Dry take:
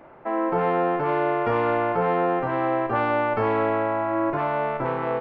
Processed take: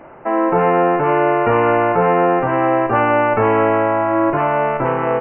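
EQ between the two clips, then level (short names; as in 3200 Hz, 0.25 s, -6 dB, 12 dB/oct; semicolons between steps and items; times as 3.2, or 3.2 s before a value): brick-wall FIR low-pass 3100 Hz; +8.0 dB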